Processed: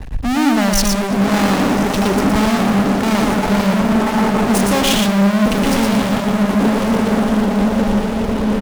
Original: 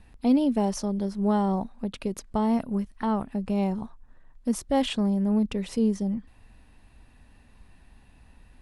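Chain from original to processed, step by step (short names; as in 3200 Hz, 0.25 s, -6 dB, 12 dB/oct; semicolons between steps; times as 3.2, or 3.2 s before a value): high shelf 2400 Hz -10.5 dB; diffused feedback echo 1.114 s, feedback 50%, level -7 dB; fuzz box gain 46 dB, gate -52 dBFS; power-law curve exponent 0.5; echo 0.117 s -3 dB; three-band expander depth 70%; gain -4 dB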